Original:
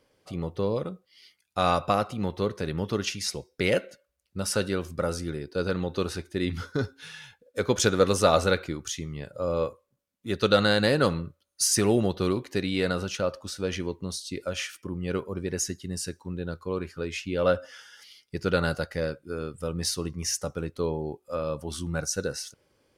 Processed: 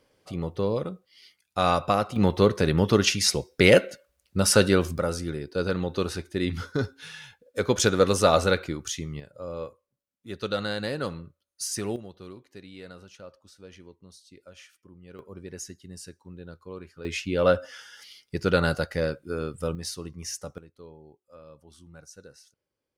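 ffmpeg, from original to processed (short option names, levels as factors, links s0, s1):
-af "asetnsamples=n=441:p=0,asendcmd='2.16 volume volume 8dB;4.98 volume volume 1dB;9.2 volume volume -8dB;11.96 volume volume -17.5dB;15.19 volume volume -9.5dB;17.05 volume volume 2.5dB;19.75 volume volume -6dB;20.58 volume volume -18.5dB',volume=1.12"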